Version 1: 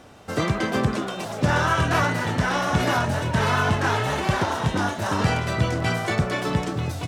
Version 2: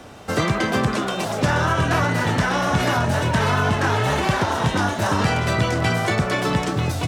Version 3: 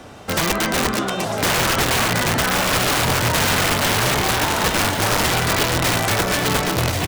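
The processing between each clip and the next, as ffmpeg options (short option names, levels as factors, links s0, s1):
-filter_complex "[0:a]acrossover=split=160|670[s0][s1][s2];[s0]acompressor=threshold=0.0355:ratio=4[s3];[s1]acompressor=threshold=0.0316:ratio=4[s4];[s2]acompressor=threshold=0.0398:ratio=4[s5];[s3][s4][s5]amix=inputs=3:normalize=0,volume=2.11"
-af "aeval=exprs='(mod(5.31*val(0)+1,2)-1)/5.31':c=same,aecho=1:1:1085:0.447,volume=1.19"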